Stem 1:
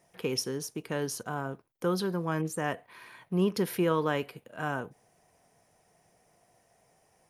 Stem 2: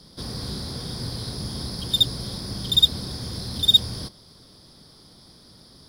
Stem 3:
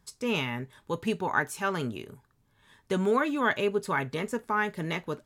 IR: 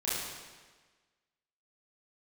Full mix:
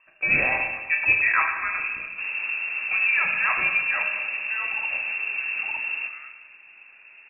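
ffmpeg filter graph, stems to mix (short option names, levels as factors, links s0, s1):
-filter_complex "[0:a]adelay=1500,volume=0.178,asplit=2[s0][s1];[s1]volume=0.237[s2];[1:a]adelay=2000,volume=1.33,asplit=2[s3][s4];[s4]volume=0.211[s5];[2:a]aeval=exprs='0.237*sin(PI/2*1.41*val(0)/0.237)':c=same,volume=0.75,afade=t=out:st=1.27:d=0.3:silence=0.473151,afade=t=out:st=3.83:d=0.32:silence=0.316228,asplit=2[s6][s7];[s7]volume=0.562[s8];[3:a]atrim=start_sample=2205[s9];[s2][s5][s8]amix=inputs=3:normalize=0[s10];[s10][s9]afir=irnorm=-1:irlink=0[s11];[s0][s3][s6][s11]amix=inputs=4:normalize=0,lowpass=f=2400:t=q:w=0.5098,lowpass=f=2400:t=q:w=0.6013,lowpass=f=2400:t=q:w=0.9,lowpass=f=2400:t=q:w=2.563,afreqshift=-2800"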